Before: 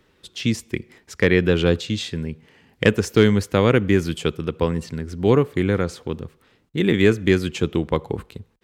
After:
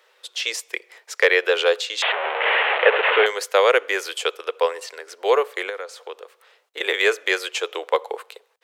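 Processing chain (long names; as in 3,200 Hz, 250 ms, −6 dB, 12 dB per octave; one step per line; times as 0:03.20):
0:02.02–0:03.26: linear delta modulator 16 kbit/s, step −15.5 dBFS
Butterworth high-pass 470 Hz 48 dB per octave
0:05.69–0:06.81: downward compressor 3 to 1, threshold −37 dBFS, peak gain reduction 11 dB
level +5 dB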